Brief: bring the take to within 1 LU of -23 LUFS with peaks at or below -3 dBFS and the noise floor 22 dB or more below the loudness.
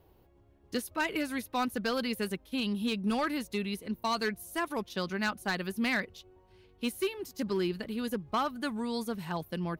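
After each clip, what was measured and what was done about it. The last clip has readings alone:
clipped 0.9%; flat tops at -23.5 dBFS; loudness -33.0 LUFS; peak -23.5 dBFS; loudness target -23.0 LUFS
-> clip repair -23.5 dBFS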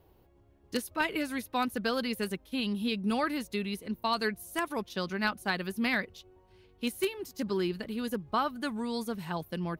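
clipped 0.0%; loudness -32.5 LUFS; peak -14.5 dBFS; loudness target -23.0 LUFS
-> gain +9.5 dB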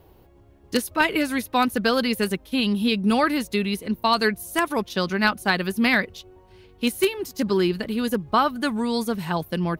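loudness -23.0 LUFS; peak -5.0 dBFS; noise floor -53 dBFS

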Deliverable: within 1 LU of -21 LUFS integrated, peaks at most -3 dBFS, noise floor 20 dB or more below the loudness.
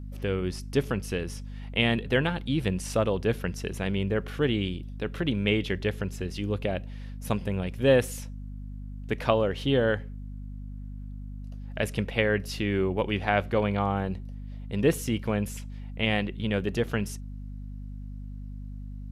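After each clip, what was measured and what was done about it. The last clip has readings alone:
hum 50 Hz; harmonics up to 250 Hz; hum level -36 dBFS; loudness -28.0 LUFS; peak -8.0 dBFS; loudness target -21.0 LUFS
-> notches 50/100/150/200/250 Hz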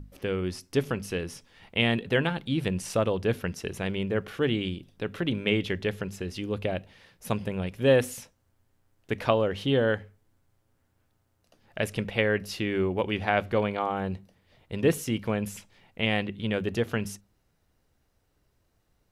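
hum none; loudness -28.5 LUFS; peak -7.5 dBFS; loudness target -21.0 LUFS
-> gain +7.5 dB; limiter -3 dBFS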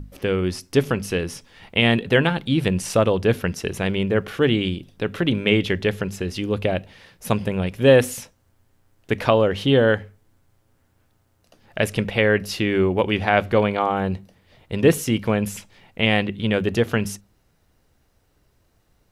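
loudness -21.5 LUFS; peak -3.0 dBFS; noise floor -64 dBFS

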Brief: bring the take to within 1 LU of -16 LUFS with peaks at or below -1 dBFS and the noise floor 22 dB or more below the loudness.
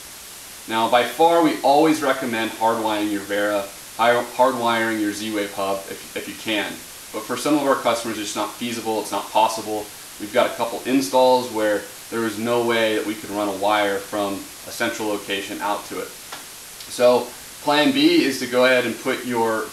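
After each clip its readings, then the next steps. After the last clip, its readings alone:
dropouts 3; longest dropout 1.2 ms; noise floor -39 dBFS; noise floor target -43 dBFS; loudness -21.0 LUFS; peak -3.5 dBFS; loudness target -16.0 LUFS
-> interpolate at 3.62/9.81/13.33, 1.2 ms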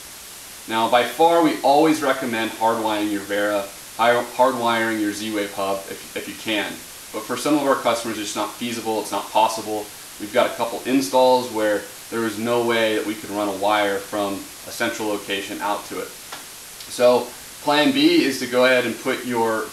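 dropouts 0; noise floor -39 dBFS; noise floor target -43 dBFS
-> denoiser 6 dB, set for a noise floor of -39 dBFS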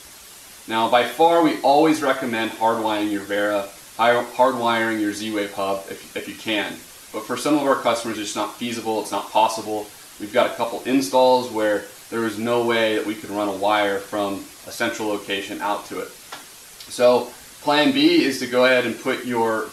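noise floor -43 dBFS; loudness -21.0 LUFS; peak -3.5 dBFS; loudness target -16.0 LUFS
-> gain +5 dB; limiter -1 dBFS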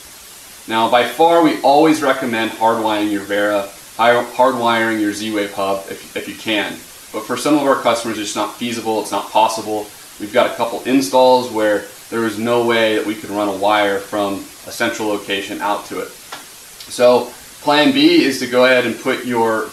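loudness -16.0 LUFS; peak -1.0 dBFS; noise floor -38 dBFS

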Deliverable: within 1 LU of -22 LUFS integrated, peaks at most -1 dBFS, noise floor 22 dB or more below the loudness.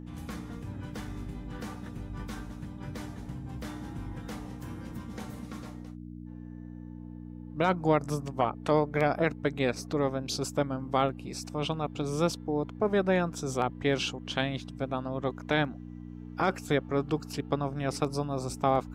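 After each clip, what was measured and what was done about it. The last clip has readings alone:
hum 60 Hz; harmonics up to 300 Hz; hum level -40 dBFS; loudness -31.5 LUFS; peak -10.5 dBFS; loudness target -22.0 LUFS
-> de-hum 60 Hz, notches 5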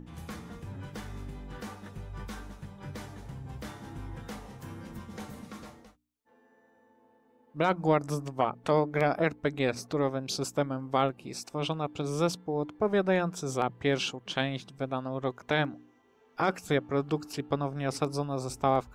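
hum none; loudness -31.0 LUFS; peak -10.5 dBFS; loudness target -22.0 LUFS
-> gain +9 dB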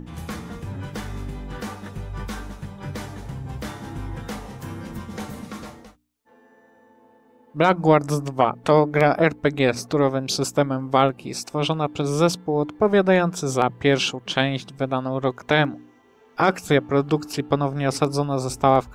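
loudness -22.0 LUFS; peak -1.5 dBFS; noise floor -55 dBFS

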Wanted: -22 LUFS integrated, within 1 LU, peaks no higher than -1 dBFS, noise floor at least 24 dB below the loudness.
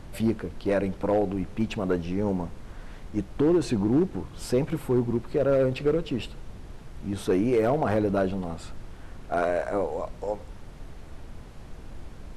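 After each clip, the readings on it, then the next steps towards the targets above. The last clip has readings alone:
clipped 0.5%; flat tops at -16.0 dBFS; noise floor -44 dBFS; noise floor target -51 dBFS; loudness -27.0 LUFS; peak -16.0 dBFS; loudness target -22.0 LUFS
-> clip repair -16 dBFS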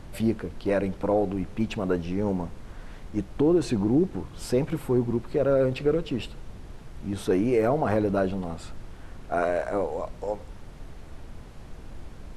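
clipped 0.0%; noise floor -44 dBFS; noise floor target -51 dBFS
-> noise print and reduce 7 dB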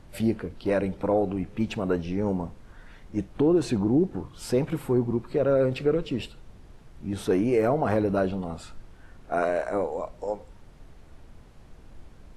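noise floor -50 dBFS; noise floor target -51 dBFS
-> noise print and reduce 6 dB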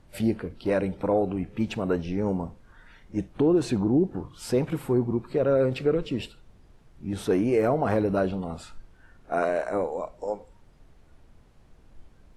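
noise floor -56 dBFS; loudness -26.5 LUFS; peak -12.0 dBFS; loudness target -22.0 LUFS
-> gain +4.5 dB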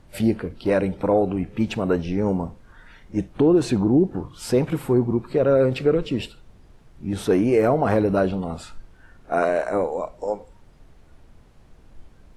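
loudness -22.0 LUFS; peak -7.5 dBFS; noise floor -51 dBFS

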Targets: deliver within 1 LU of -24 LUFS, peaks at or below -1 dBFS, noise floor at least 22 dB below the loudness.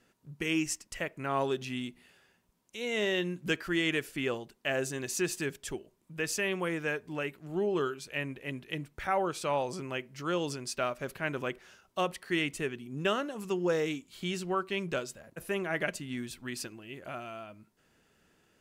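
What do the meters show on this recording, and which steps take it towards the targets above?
loudness -33.5 LUFS; peak -15.5 dBFS; loudness target -24.0 LUFS
-> gain +9.5 dB

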